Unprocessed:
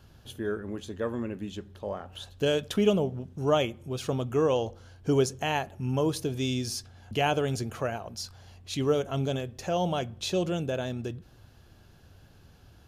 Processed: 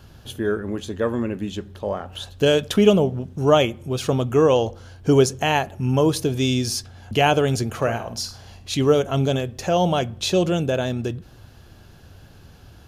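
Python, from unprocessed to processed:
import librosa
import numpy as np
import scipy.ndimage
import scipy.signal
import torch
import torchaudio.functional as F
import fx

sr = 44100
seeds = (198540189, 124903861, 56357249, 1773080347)

y = fx.room_flutter(x, sr, wall_m=8.8, rt60_s=0.34, at=(7.77, 8.75))
y = F.gain(torch.from_numpy(y), 8.5).numpy()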